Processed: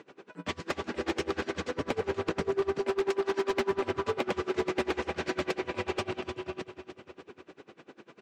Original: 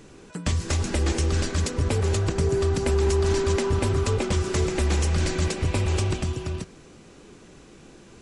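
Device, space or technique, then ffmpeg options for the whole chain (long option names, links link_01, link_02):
helicopter radio: -filter_complex "[0:a]asettb=1/sr,asplit=3[link_01][link_02][link_03];[link_01]atrim=end=2.794[link_04];[link_02]atrim=start=2.79:end=3.53,asetpts=PTS-STARTPTS,afade=type=in:duration=0.004:curve=qsin,afade=type=out:start_time=0.736:duration=0.004:curve=qsin,highpass=frequency=230:width=0.5412,highpass=frequency=230:width=1.3066[link_05];[link_03]atrim=start=3.526[link_06];[link_04][link_05]acrossfade=duration=0.004:curve1=hsin:curve2=qsin[link_07];[link_07][link_06]acrossfade=duration=0.004:curve1=qsin:curve2=hsin,highpass=310,lowpass=2800,aecho=1:1:305|610|915|1220|1525|1830:0.266|0.144|0.0776|0.0419|0.0226|0.0122,aeval=exprs='val(0)*pow(10,-25*(0.5-0.5*cos(2*PI*10*n/s))/20)':channel_layout=same,asoftclip=type=hard:threshold=-27dB,volume=5dB"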